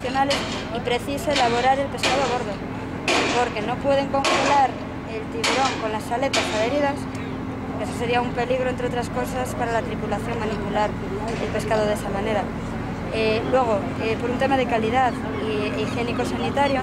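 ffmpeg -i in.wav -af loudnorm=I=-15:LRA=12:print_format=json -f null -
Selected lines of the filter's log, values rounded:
"input_i" : "-22.9",
"input_tp" : "-7.0",
"input_lra" : "3.2",
"input_thresh" : "-32.9",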